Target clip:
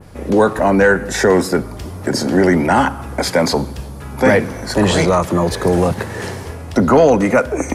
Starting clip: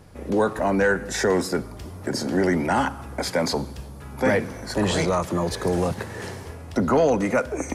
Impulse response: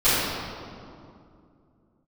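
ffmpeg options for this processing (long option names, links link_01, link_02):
-af "adynamicequalizer=threshold=0.00708:dfrequency=5600:dqfactor=0.72:tfrequency=5600:tqfactor=0.72:attack=5:release=100:ratio=0.375:range=2:mode=cutabove:tftype=bell,volume=8.5dB"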